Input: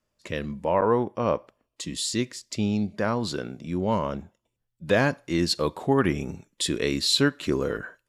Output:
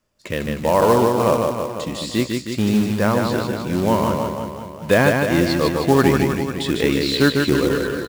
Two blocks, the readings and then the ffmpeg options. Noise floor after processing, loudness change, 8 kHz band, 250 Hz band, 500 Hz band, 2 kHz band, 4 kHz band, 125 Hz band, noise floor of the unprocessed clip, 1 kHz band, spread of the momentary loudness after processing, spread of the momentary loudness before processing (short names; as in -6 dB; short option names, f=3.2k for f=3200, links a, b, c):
-35 dBFS, +7.0 dB, +1.5 dB, +8.5 dB, +8.0 dB, +8.0 dB, +2.0 dB, +8.5 dB, -80 dBFS, +8.0 dB, 10 LU, 11 LU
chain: -filter_complex "[0:a]acrossover=split=3400[a][b];[b]acompressor=threshold=-42dB:ratio=4:attack=1:release=60[c];[a][c]amix=inputs=2:normalize=0,acrusher=bits=4:mode=log:mix=0:aa=0.000001,aecho=1:1:150|315|496.5|696.2|915.8:0.631|0.398|0.251|0.158|0.1,volume=6dB"